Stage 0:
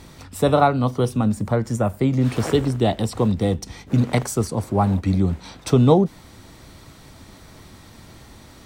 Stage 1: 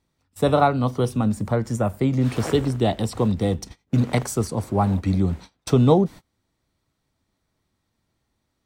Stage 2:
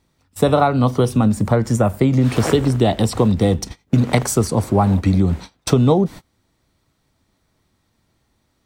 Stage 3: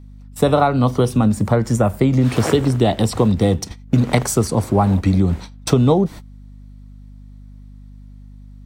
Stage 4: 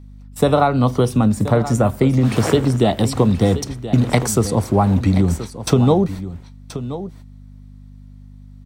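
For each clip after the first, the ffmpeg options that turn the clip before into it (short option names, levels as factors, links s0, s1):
-af "agate=range=0.0398:threshold=0.0224:ratio=16:detection=peak,volume=0.841"
-af "acompressor=threshold=0.112:ratio=6,volume=2.66"
-af "aeval=exprs='val(0)+0.0126*(sin(2*PI*50*n/s)+sin(2*PI*2*50*n/s)/2+sin(2*PI*3*50*n/s)/3+sin(2*PI*4*50*n/s)/4+sin(2*PI*5*50*n/s)/5)':c=same"
-af "aecho=1:1:1028:0.224"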